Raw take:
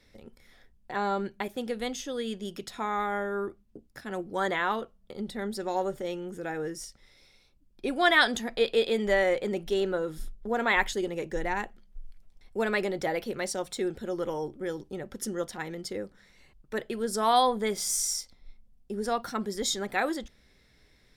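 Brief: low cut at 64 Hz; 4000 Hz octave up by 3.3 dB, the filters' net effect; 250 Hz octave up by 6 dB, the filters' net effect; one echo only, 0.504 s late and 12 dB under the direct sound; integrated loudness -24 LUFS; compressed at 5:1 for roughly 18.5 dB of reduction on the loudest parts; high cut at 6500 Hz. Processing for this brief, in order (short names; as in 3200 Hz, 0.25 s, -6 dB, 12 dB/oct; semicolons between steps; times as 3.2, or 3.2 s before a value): HPF 64 Hz; LPF 6500 Hz; bell 250 Hz +8 dB; bell 4000 Hz +4.5 dB; compressor 5:1, threshold -38 dBFS; echo 0.504 s -12 dB; gain +17 dB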